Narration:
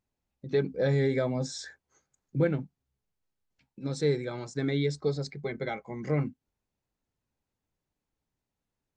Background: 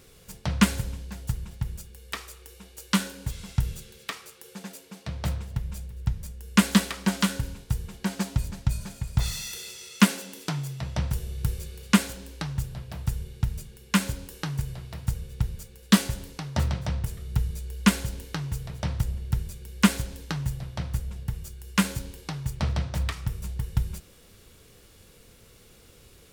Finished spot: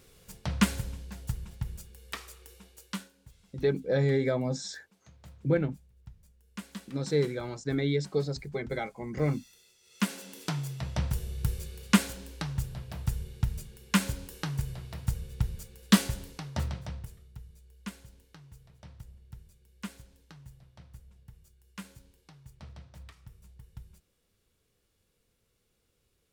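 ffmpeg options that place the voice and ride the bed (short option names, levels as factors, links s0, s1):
-filter_complex "[0:a]adelay=3100,volume=1[s0];[1:a]volume=5.96,afade=t=out:st=2.51:d=0.59:silence=0.125893,afade=t=in:st=9.82:d=0.67:silence=0.1,afade=t=out:st=16.07:d=1.26:silence=0.11885[s1];[s0][s1]amix=inputs=2:normalize=0"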